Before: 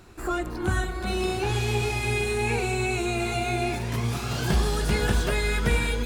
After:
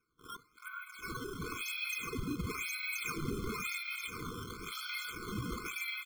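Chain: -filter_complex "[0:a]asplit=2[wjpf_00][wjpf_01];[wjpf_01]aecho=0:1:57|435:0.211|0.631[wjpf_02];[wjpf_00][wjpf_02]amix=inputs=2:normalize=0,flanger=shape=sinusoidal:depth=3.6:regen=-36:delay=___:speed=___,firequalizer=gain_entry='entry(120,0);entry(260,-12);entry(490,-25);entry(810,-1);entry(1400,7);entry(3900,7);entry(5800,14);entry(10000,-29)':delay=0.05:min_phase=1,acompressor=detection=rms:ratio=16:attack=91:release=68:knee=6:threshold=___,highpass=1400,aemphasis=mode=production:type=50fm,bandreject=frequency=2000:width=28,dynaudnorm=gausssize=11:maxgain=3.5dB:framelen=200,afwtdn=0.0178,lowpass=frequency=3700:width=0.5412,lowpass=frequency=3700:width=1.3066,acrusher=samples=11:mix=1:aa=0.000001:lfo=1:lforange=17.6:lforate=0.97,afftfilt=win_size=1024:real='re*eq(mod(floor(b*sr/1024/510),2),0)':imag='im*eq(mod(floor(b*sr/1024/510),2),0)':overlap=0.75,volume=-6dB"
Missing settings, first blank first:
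7.4, 0.97, -33dB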